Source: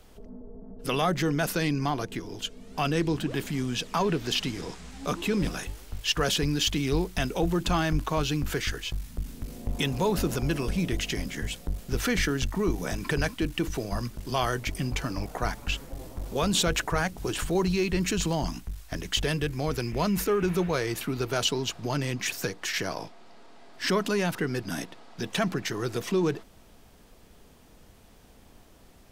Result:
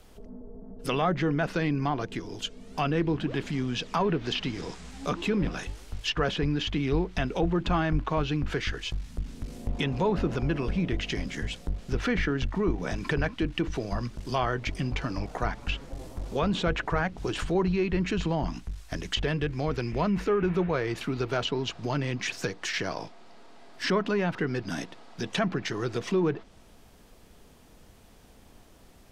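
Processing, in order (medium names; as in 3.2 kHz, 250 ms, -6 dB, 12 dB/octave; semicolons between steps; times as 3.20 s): low-pass that closes with the level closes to 2.4 kHz, closed at -22.5 dBFS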